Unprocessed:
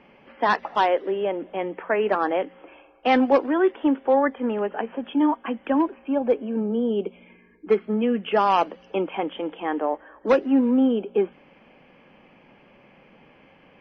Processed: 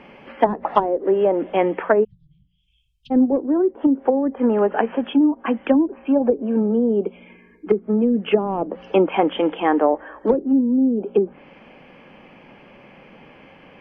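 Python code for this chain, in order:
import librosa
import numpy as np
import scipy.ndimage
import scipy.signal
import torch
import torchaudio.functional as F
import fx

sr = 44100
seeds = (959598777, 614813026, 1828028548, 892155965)

y = fx.env_lowpass_down(x, sr, base_hz=320.0, full_db=-17.0)
y = fx.cheby1_bandstop(y, sr, low_hz=140.0, high_hz=3600.0, order=5, at=(2.03, 3.1), fade=0.02)
y = fx.rider(y, sr, range_db=4, speed_s=0.5)
y = F.gain(torch.from_numpy(y), 7.0).numpy()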